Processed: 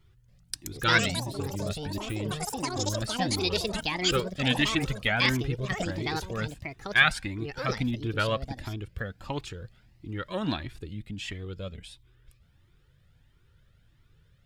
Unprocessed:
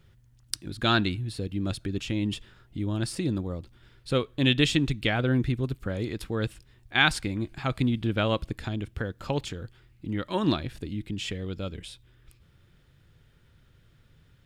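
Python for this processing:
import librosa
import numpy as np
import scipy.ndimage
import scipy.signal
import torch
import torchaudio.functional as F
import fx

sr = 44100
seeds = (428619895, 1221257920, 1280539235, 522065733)

y = fx.dynamic_eq(x, sr, hz=1700.0, q=1.0, threshold_db=-42.0, ratio=4.0, max_db=7)
y = fx.echo_pitch(y, sr, ms=283, semitones=6, count=3, db_per_echo=-3.0)
y = fx.comb_cascade(y, sr, direction='rising', hz=1.5)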